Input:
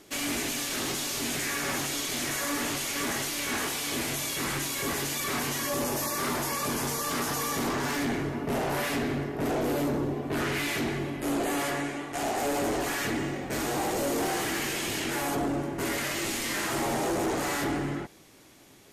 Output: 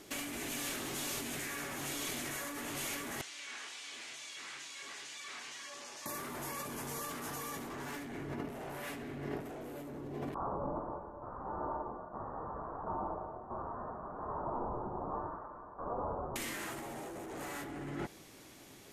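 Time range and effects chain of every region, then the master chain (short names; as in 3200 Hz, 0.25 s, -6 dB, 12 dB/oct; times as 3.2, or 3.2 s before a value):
3.21–6.06 Gaussian blur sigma 1.7 samples + differentiator
10.34–16.36 elliptic high-pass 1500 Hz, stop band 60 dB + inverted band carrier 2600 Hz
whole clip: dynamic EQ 4900 Hz, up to -5 dB, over -50 dBFS, Q 1.4; negative-ratio compressor -36 dBFS, ratio -1; gain -4.5 dB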